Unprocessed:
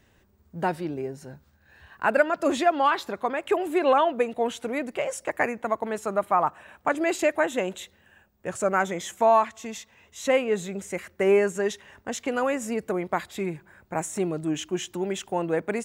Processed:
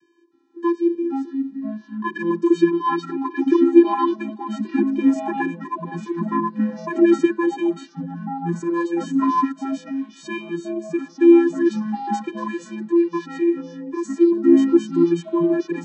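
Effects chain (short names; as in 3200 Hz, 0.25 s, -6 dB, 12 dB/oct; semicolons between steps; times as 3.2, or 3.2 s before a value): vocoder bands 16, square 341 Hz; bell 5200 Hz +3 dB 0.49 oct; echoes that change speed 0.311 s, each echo -4 st, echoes 3, each echo -6 dB; gain +6 dB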